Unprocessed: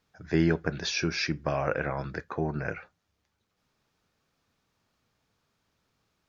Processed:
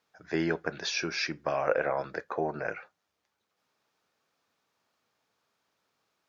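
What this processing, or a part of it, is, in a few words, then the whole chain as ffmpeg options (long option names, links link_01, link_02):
filter by subtraction: -filter_complex "[0:a]asplit=2[link_01][link_02];[link_02]lowpass=660,volume=-1[link_03];[link_01][link_03]amix=inputs=2:normalize=0,asettb=1/sr,asplit=3[link_04][link_05][link_06];[link_04]atrim=end=1.694[link_07];[link_05]atrim=start=1.69:end=2.67,asetpts=PTS-STARTPTS,afade=type=in:duration=0.004:curve=qsin,afade=type=out:start_time=0.976:duration=0.004:curve=qsin,equalizer=frequency=560:width=1.5:gain=6[link_08];[link_06]atrim=start=2.666[link_09];[link_07][link_08]acrossfade=duration=0.004:curve1=hsin:curve2=qsin[link_10];[link_10][link_09]acrossfade=duration=0.004:curve1=qsin:curve2=hsin,volume=-1.5dB"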